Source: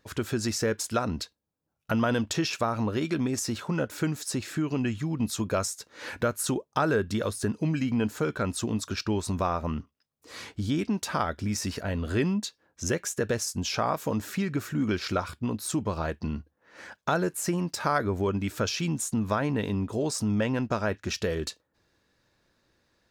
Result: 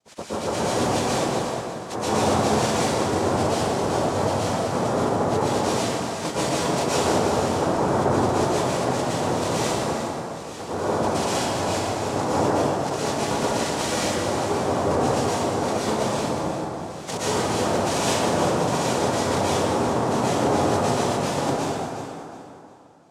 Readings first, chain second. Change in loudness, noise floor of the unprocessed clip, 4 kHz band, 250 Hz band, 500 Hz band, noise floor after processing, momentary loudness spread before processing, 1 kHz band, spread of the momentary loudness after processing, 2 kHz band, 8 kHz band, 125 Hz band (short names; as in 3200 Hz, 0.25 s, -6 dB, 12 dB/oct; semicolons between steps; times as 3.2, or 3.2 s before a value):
+6.0 dB, -76 dBFS, +7.0 dB, +3.0 dB, +8.5 dB, -37 dBFS, 6 LU, +10.5 dB, 7 LU, +4.0 dB, +5.0 dB, +3.0 dB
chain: nonlinear frequency compression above 1200 Hz 1.5:1; noise vocoder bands 2; echo with dull and thin repeats by turns 0.18 s, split 920 Hz, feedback 56%, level -5 dB; plate-style reverb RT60 2.6 s, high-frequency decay 0.5×, pre-delay 0.105 s, DRR -9.5 dB; gain -5 dB